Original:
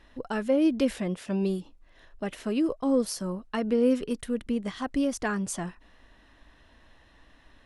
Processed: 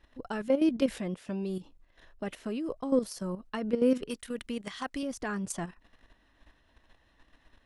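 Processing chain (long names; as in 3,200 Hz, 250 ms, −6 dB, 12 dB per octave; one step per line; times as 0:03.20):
0:04.09–0:05.03: tilt shelving filter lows −6.5 dB, about 730 Hz
output level in coarse steps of 11 dB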